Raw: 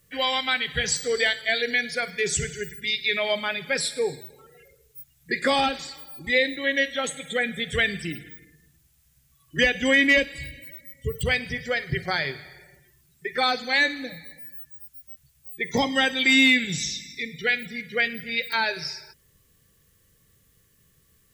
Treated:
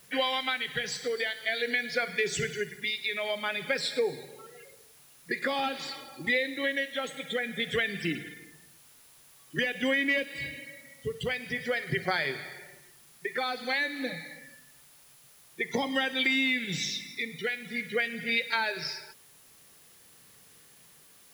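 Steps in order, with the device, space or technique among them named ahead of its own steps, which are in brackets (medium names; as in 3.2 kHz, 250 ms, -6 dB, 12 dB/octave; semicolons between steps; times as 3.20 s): medium wave at night (band-pass 190–4300 Hz; compression, threshold -29 dBFS, peak gain reduction 14 dB; tremolo 0.49 Hz, depth 39%; whistle 10 kHz -66 dBFS; white noise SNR 25 dB); trim +4.5 dB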